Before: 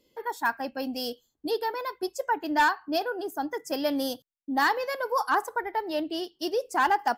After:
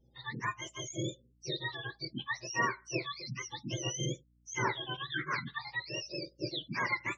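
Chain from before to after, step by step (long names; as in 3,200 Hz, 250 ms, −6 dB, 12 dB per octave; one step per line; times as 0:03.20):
frequency axis turned over on the octave scale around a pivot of 1,300 Hz
mains hum 60 Hz, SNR 31 dB
gate on every frequency bin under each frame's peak −25 dB strong
level −5.5 dB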